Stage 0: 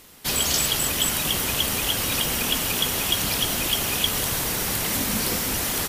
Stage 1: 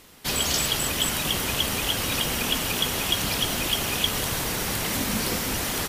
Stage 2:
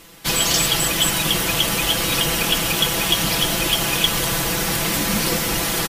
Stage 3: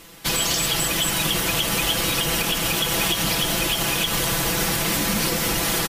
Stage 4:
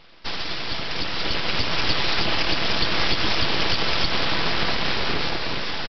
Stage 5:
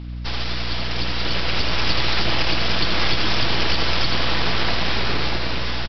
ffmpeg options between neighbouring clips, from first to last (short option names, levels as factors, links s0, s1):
-af "highshelf=f=7400:g=-6"
-af "aeval=exprs='0.355*(cos(1*acos(clip(val(0)/0.355,-1,1)))-cos(1*PI/2))+0.01*(cos(3*acos(clip(val(0)/0.355,-1,1)))-cos(3*PI/2))':c=same,aecho=1:1:6:0.72,volume=1.78"
-af "alimiter=limit=0.266:level=0:latency=1:release=109"
-af "dynaudnorm=f=390:g=7:m=2.11,aresample=11025,aeval=exprs='abs(val(0))':c=same,aresample=44100,volume=0.841"
-filter_complex "[0:a]aeval=exprs='val(0)+0.0282*(sin(2*PI*60*n/s)+sin(2*PI*2*60*n/s)/2+sin(2*PI*3*60*n/s)/3+sin(2*PI*4*60*n/s)/4+sin(2*PI*5*60*n/s)/5)':c=same,asplit=2[s0][s1];[s1]aecho=0:1:82:0.501[s2];[s0][s2]amix=inputs=2:normalize=0"